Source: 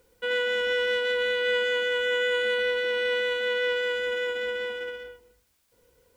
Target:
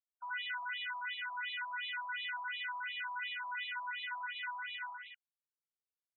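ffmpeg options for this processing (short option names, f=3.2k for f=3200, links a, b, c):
-af "adynamicequalizer=threshold=0.00447:dfrequency=1700:dqfactor=6.3:tfrequency=1700:tqfactor=6.3:attack=5:release=100:ratio=0.375:range=2.5:mode=cutabove:tftype=bell,alimiter=limit=-24dB:level=0:latency=1:release=290,aresample=16000,acrusher=bits=4:dc=4:mix=0:aa=0.000001,aresample=44100,afftfilt=real='re*between(b*sr/1024,890*pow(2900/890,0.5+0.5*sin(2*PI*2.8*pts/sr))/1.41,890*pow(2900/890,0.5+0.5*sin(2*PI*2.8*pts/sr))*1.41)':imag='im*between(b*sr/1024,890*pow(2900/890,0.5+0.5*sin(2*PI*2.8*pts/sr))/1.41,890*pow(2900/890,0.5+0.5*sin(2*PI*2.8*pts/sr))*1.41)':win_size=1024:overlap=0.75,volume=1dB"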